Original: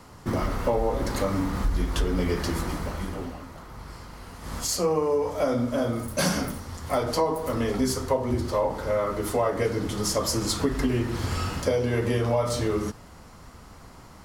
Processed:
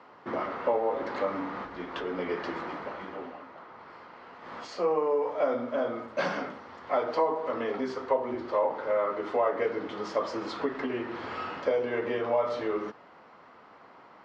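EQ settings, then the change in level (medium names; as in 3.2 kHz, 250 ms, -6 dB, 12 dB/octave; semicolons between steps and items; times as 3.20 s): band-pass 410–2800 Hz; distance through air 130 m; 0.0 dB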